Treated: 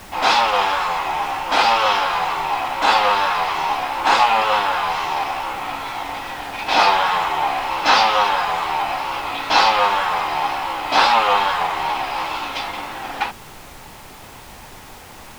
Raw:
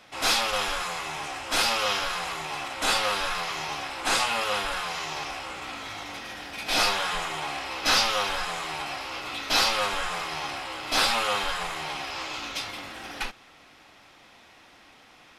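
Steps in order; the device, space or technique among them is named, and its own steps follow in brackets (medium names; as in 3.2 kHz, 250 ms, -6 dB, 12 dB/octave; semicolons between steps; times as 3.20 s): horn gramophone (band-pass 200–3900 Hz; peaking EQ 890 Hz +11 dB 0.58 oct; wow and flutter; pink noise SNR 21 dB); trim +6.5 dB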